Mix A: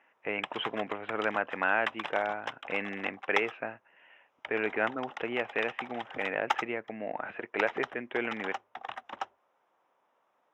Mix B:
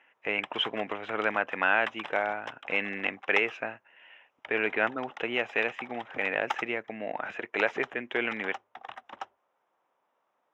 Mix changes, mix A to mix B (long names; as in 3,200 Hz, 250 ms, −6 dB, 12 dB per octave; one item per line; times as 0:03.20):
speech: remove high-frequency loss of the air 430 metres
background −3.0 dB